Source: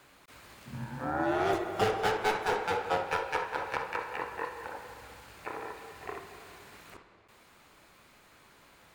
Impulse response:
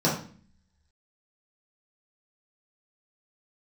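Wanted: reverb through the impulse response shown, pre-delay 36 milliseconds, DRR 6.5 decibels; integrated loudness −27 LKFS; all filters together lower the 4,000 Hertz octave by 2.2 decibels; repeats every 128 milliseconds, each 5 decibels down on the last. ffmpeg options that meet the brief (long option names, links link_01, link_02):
-filter_complex "[0:a]equalizer=frequency=4000:width_type=o:gain=-3,aecho=1:1:128|256|384|512|640|768|896:0.562|0.315|0.176|0.0988|0.0553|0.031|0.0173,asplit=2[link_01][link_02];[1:a]atrim=start_sample=2205,adelay=36[link_03];[link_02][link_03]afir=irnorm=-1:irlink=0,volume=-20.5dB[link_04];[link_01][link_04]amix=inputs=2:normalize=0,volume=2.5dB"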